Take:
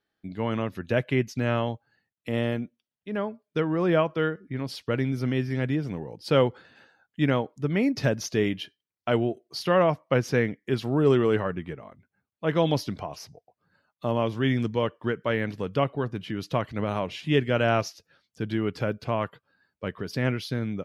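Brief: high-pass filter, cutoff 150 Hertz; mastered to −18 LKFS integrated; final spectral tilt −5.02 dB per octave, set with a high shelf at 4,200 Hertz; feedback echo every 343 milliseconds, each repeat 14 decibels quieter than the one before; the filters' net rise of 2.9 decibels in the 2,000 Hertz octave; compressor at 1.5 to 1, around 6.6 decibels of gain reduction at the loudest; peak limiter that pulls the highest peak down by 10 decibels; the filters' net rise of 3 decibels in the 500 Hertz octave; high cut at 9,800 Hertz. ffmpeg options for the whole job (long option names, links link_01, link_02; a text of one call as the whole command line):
ffmpeg -i in.wav -af "highpass=150,lowpass=9800,equalizer=frequency=500:width_type=o:gain=3.5,equalizer=frequency=2000:width_type=o:gain=4.5,highshelf=frequency=4200:gain=-5.5,acompressor=threshold=-32dB:ratio=1.5,alimiter=limit=-22.5dB:level=0:latency=1,aecho=1:1:343|686:0.2|0.0399,volume=16.5dB" out.wav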